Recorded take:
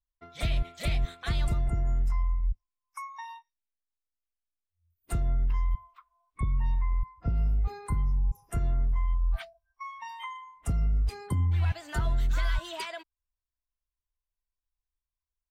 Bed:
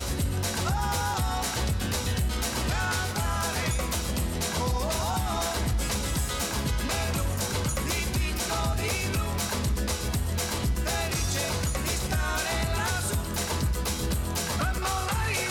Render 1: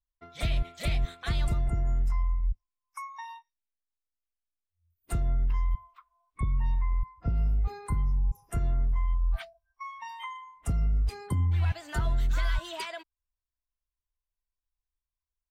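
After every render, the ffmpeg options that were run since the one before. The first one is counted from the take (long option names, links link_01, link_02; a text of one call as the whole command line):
ffmpeg -i in.wav -af anull out.wav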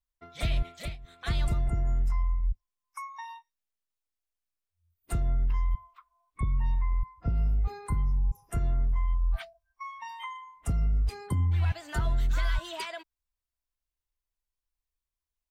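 ffmpeg -i in.wav -filter_complex "[0:a]asplit=3[link_01][link_02][link_03];[link_01]atrim=end=0.97,asetpts=PTS-STARTPTS,afade=type=out:start_time=0.73:duration=0.24:silence=0.1[link_04];[link_02]atrim=start=0.97:end=1.04,asetpts=PTS-STARTPTS,volume=-20dB[link_05];[link_03]atrim=start=1.04,asetpts=PTS-STARTPTS,afade=type=in:duration=0.24:silence=0.1[link_06];[link_04][link_05][link_06]concat=n=3:v=0:a=1" out.wav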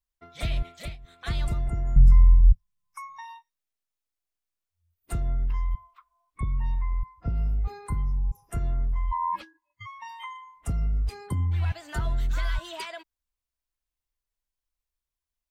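ffmpeg -i in.wav -filter_complex "[0:a]asettb=1/sr,asplit=3[link_01][link_02][link_03];[link_01]atrim=end=1.964[link_04];[link_02]atrim=start=1.96:end=3.24,asetpts=PTS-STARTPTS,afade=type=in:duration=0.004:curve=qsin,afade=type=out:start_time=1.276:duration=0.004:curve=qsin,lowshelf=frequency=220:width_type=q:width=3:gain=12[link_05];[link_03]atrim=start=3.236[link_06];[link_04][link_05]acrossfade=duration=0.004:curve1=hsin:curve2=qsin[link_07];[link_07][link_06]acrossfade=duration=0.004:curve1=qsin:curve2=hsin,asplit=3[link_08][link_09][link_10];[link_08]afade=type=out:start_time=9.11:duration=0.02[link_11];[link_09]aeval=exprs='val(0)*sin(2*PI*990*n/s)':channel_layout=same,afade=type=in:start_time=9.11:duration=0.02,afade=type=out:start_time=9.85:duration=0.02[link_12];[link_10]afade=type=in:start_time=9.85:duration=0.02[link_13];[link_11][link_12][link_13]amix=inputs=3:normalize=0" out.wav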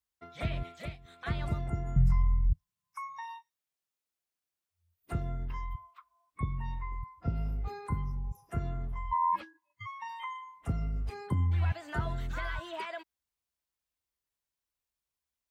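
ffmpeg -i in.wav -filter_complex "[0:a]highpass=81,acrossover=split=2600[link_01][link_02];[link_02]acompressor=threshold=-56dB:ratio=4:attack=1:release=60[link_03];[link_01][link_03]amix=inputs=2:normalize=0" out.wav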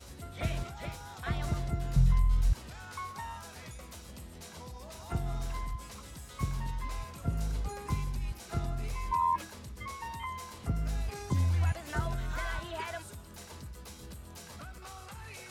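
ffmpeg -i in.wav -i bed.wav -filter_complex "[1:a]volume=-18.5dB[link_01];[0:a][link_01]amix=inputs=2:normalize=0" out.wav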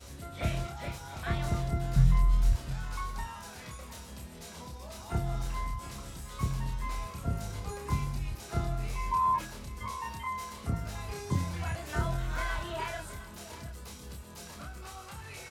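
ffmpeg -i in.wav -filter_complex "[0:a]asplit=2[link_01][link_02];[link_02]adelay=29,volume=-3dB[link_03];[link_01][link_03]amix=inputs=2:normalize=0,aecho=1:1:715:0.188" out.wav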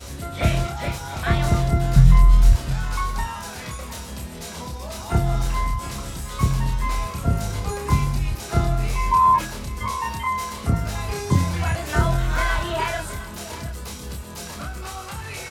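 ffmpeg -i in.wav -af "volume=11.5dB,alimiter=limit=-3dB:level=0:latency=1" out.wav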